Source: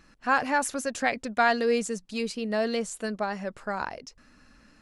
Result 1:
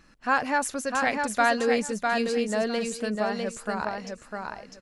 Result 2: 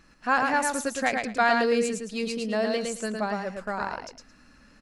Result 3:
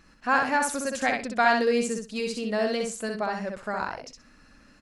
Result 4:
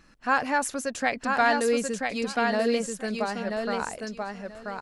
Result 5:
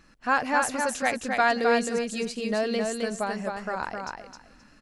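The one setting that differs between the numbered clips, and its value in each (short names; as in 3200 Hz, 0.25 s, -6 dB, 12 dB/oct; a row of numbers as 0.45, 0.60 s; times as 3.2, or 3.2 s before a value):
feedback echo, time: 652, 110, 63, 985, 263 ms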